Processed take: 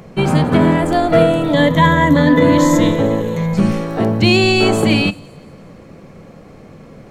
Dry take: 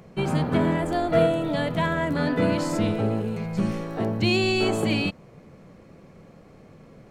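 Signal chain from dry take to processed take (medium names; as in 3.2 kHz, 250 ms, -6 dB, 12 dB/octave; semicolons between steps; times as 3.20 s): 1.53–3.54 s: rippled EQ curve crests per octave 1.1, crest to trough 13 dB; feedback echo behind a high-pass 173 ms, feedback 50%, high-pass 5.5 kHz, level -17.5 dB; on a send at -18.5 dB: reverberation RT60 0.45 s, pre-delay 4 ms; on the sum: loudness maximiser +11 dB; trim -1 dB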